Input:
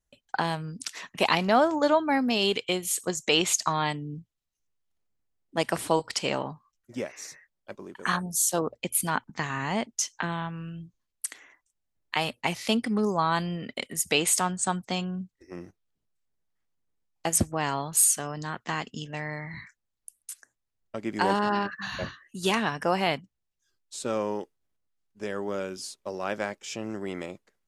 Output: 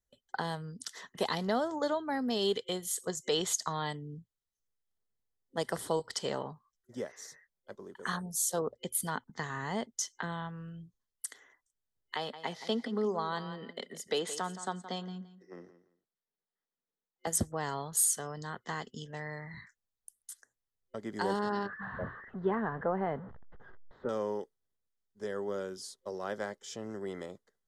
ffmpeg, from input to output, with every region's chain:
ffmpeg -i in.wav -filter_complex "[0:a]asettb=1/sr,asplit=3[link_01][link_02][link_03];[link_01]atrim=end=12.164[link_04];[link_02]atrim=start=12.16:end=17.27,asetpts=PTS-STARTPTS,afade=type=in:duration=0.004:curve=qsin,afade=type=out:start_time=5.106:duration=0.004:curve=qsin,acrossover=split=170 5700:gain=0.0891 1 0.141[link_05][link_06][link_07];[link_05][link_06][link_07]amix=inputs=3:normalize=0,aecho=1:1:170|340:0.2|0.0419,atrim=end_sample=225351[link_08];[link_03]atrim=start=17.266[link_09];[link_04][link_08]acrossfade=duration=0.004:curve1=hsin:curve2=qsin[link_10];[link_10][link_09]acrossfade=duration=0.004:curve1=qsin:curve2=hsin,asettb=1/sr,asplit=3[link_11][link_12][link_13];[link_11]atrim=end=21.694[link_14];[link_12]atrim=start=21.69:end=24.09,asetpts=PTS-STARTPTS,afade=type=in:duration=0.004:curve=qsin,afade=type=out:start_time=2.396:duration=0.004:curve=qsin,aeval=exprs='val(0)+0.5*0.02*sgn(val(0))':channel_layout=same,lowpass=frequency=1700:width=0.5412,lowpass=frequency=1700:width=1.3066[link_15];[link_13]atrim=start=24.086[link_16];[link_14][link_15]acrossfade=duration=0.004:curve1=hsin:curve2=qsin[link_17];[link_17][link_16]acrossfade=duration=0.004:curve1=qsin:curve2=hsin,acrossover=split=470|3000[link_18][link_19][link_20];[link_19]acompressor=threshold=-25dB:ratio=6[link_21];[link_18][link_21][link_20]amix=inputs=3:normalize=0,superequalizer=6b=0.708:7b=1.58:12b=0.251,volume=-6.5dB" out.wav

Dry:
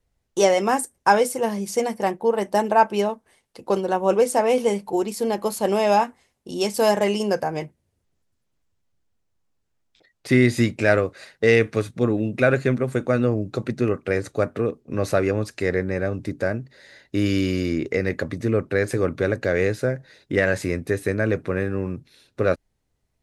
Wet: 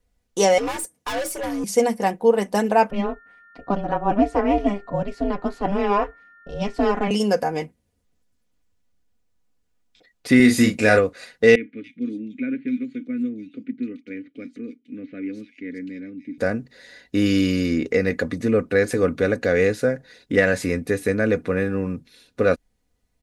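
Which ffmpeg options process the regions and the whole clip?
ffmpeg -i in.wav -filter_complex "[0:a]asettb=1/sr,asplit=3[link_01][link_02][link_03];[link_01]atrim=end=0.584[link_04];[link_02]atrim=start=0.58:end=1.64,asetpts=PTS-STARTPTS,afade=type=in:duration=0.004:curve=qsin,afade=type=out:start_time=1.056:duration=0.004:curve=qsin,afreqshift=74,aeval=exprs='(tanh(20*val(0)+0.2)-tanh(0.2))/20':channel_layout=same[link_05];[link_03]atrim=start=1.636[link_06];[link_04][link_05]acrossfade=duration=0.004:curve1=hsin:curve2=qsin[link_07];[link_07][link_06]acrossfade=duration=0.004:curve1=qsin:curve2=hsin,asettb=1/sr,asplit=3[link_08][link_09][link_10];[link_08]atrim=end=2.904[link_11];[link_09]atrim=start=2.9:end=7.11,asetpts=PTS-STARTPTS,afade=type=in:duration=0.004:curve=qsin,afade=type=out:start_time=4.206:duration=0.004:curve=qsin,aeval=exprs='val(0)+0.00562*sin(2*PI*1600*n/s)':channel_layout=same,aeval=exprs='val(0)*sin(2*PI*200*n/s)':channel_layout=same,lowpass=2500[link_12];[link_10]atrim=start=7.106[link_13];[link_11][link_12]acrossfade=duration=0.004:curve1=hsin:curve2=qsin[link_14];[link_14][link_13]acrossfade=duration=0.004:curve1=qsin:curve2=hsin,asettb=1/sr,asplit=3[link_15][link_16][link_17];[link_15]atrim=end=10.364[link_18];[link_16]atrim=start=10.36:end=10.99,asetpts=PTS-STARTPTS,afade=type=in:duration=0.004:curve=qsin,afade=type=out:start_time=0.626:duration=0.004:curve=qsin,highshelf=frequency=7400:gain=8,asplit=2[link_19][link_20];[link_20]adelay=37,volume=-5.5dB[link_21];[link_19][link_21]amix=inputs=2:normalize=0,atrim=end_sample=27783[link_22];[link_17]atrim=start=10.986[link_23];[link_18][link_22]acrossfade=duration=0.004:curve1=hsin:curve2=qsin[link_24];[link_24][link_23]acrossfade=duration=0.004:curve1=qsin:curve2=hsin,asettb=1/sr,asplit=3[link_25][link_26][link_27];[link_25]atrim=end=11.554[link_28];[link_26]atrim=start=11.55:end=16.38,asetpts=PTS-STARTPTS,afade=type=in:duration=0.004:curve=qsin,afade=type=out:start_time=4.826:duration=0.004:curve=qsin,asplit=3[link_29][link_30][link_31];[link_29]bandpass=frequency=270:width_type=q:width=8,volume=0dB[link_32];[link_30]bandpass=frequency=2290:width_type=q:width=8,volume=-6dB[link_33];[link_31]bandpass=frequency=3010:width_type=q:width=8,volume=-9dB[link_34];[link_32][link_33][link_34]amix=inputs=3:normalize=0,acrossover=split=3100[link_35][link_36];[link_36]adelay=290[link_37];[link_35][link_37]amix=inputs=2:normalize=0,atrim=end_sample=213003[link_38];[link_27]atrim=start=16.376[link_39];[link_28][link_38]acrossfade=duration=0.004:curve1=hsin:curve2=qsin[link_40];[link_40][link_39]acrossfade=duration=0.004:curve1=qsin:curve2=hsin,equalizer=frequency=930:width=1.5:gain=-2,aecho=1:1:4.1:0.54,volume=1.5dB" out.wav

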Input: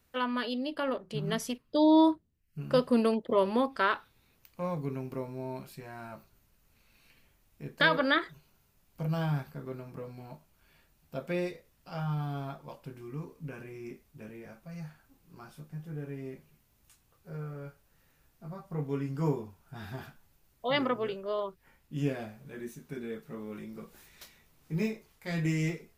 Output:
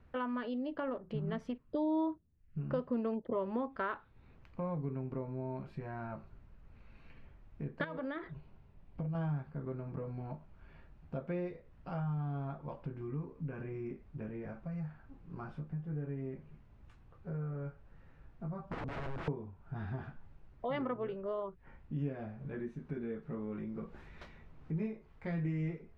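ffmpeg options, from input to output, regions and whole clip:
ffmpeg -i in.wav -filter_complex "[0:a]asettb=1/sr,asplit=3[link_01][link_02][link_03];[link_01]atrim=end=7.844[link_04];[link_02]atrim=start=7.84:end=9.15,asetpts=PTS-STARTPTS,afade=type=in:duration=0.004:curve=qsin,afade=type=out:start_time=1.306:duration=0.004:curve=qsin,lowpass=5200,equalizer=frequency=1400:width=2.3:gain=-5.5,acompressor=threshold=-35dB:ratio=3:attack=3.2:release=140:knee=1:detection=peak[link_05];[link_03]atrim=start=9.146[link_06];[link_04][link_05]acrossfade=duration=0.004:curve1=hsin:curve2=qsin[link_07];[link_07][link_06]acrossfade=duration=0.004:curve1=qsin:curve2=hsin,asettb=1/sr,asplit=3[link_08][link_09][link_10];[link_08]atrim=end=18.614[link_11];[link_09]atrim=start=18.61:end=19.28,asetpts=PTS-STARTPTS,afade=type=in:duration=0.004:curve=qsin,afade=type=out:start_time=0.666:duration=0.004:curve=qsin,asuperstop=centerf=2000:order=12:qfactor=7.8,aeval=exprs='(mod(53.1*val(0)+1,2)-1)/53.1':channel_layout=same[link_12];[link_10]atrim=start=19.276[link_13];[link_11][link_12]acrossfade=duration=0.004:curve1=hsin:curve2=qsin[link_14];[link_14][link_13]acrossfade=duration=0.004:curve1=qsin:curve2=hsin,lowpass=1700,lowshelf=frequency=150:gain=8,acompressor=threshold=-46dB:ratio=2.5,volume=5.5dB" out.wav

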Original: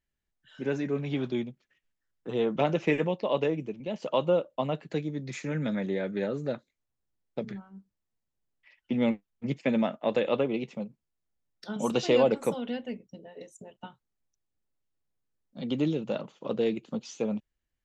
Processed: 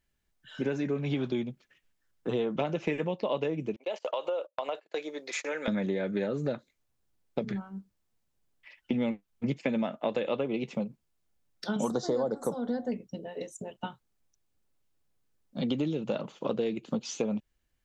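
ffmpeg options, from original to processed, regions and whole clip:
ffmpeg -i in.wav -filter_complex "[0:a]asettb=1/sr,asplit=3[link_01][link_02][link_03];[link_01]atrim=end=3.764[link_04];[link_02]atrim=start=3.76:end=5.68,asetpts=PTS-STARTPTS,afade=type=in:duration=0.004:curve=qsin,afade=type=out:start_time=1.916:duration=0.004:curve=qsin,agate=range=-22dB:threshold=-42dB:ratio=16:release=100:detection=peak,highpass=frequency=450:width=0.5412,highpass=frequency=450:width=1.3066,acompressor=threshold=-34dB:ratio=5:attack=3.2:release=140:knee=1:detection=peak[link_05];[link_03]atrim=start=5.676[link_06];[link_04][link_05]acrossfade=duration=0.004:curve1=hsin:curve2=qsin[link_07];[link_07][link_06]acrossfade=duration=0.004:curve1=qsin:curve2=hsin,asettb=1/sr,asplit=3[link_08][link_09][link_10];[link_08]atrim=end=11.894[link_11];[link_09]atrim=start=11.89:end=12.92,asetpts=PTS-STARTPTS,afade=type=in:duration=0.004:curve=qsin,afade=type=out:start_time=1.026:duration=0.004:curve=qsin,aeval=exprs='val(0)+0.00224*sin(2*PI*730*n/s)':channel_layout=same,asuperstop=centerf=2600:order=4:qfactor=0.98[link_12];[link_10]atrim=start=12.916[link_13];[link_11][link_12]acrossfade=duration=0.004:curve1=hsin:curve2=qsin[link_14];[link_14][link_13]acrossfade=duration=0.004:curve1=qsin:curve2=hsin,bandreject=frequency=1900:width=29,acompressor=threshold=-34dB:ratio=6,volume=7dB" out.wav

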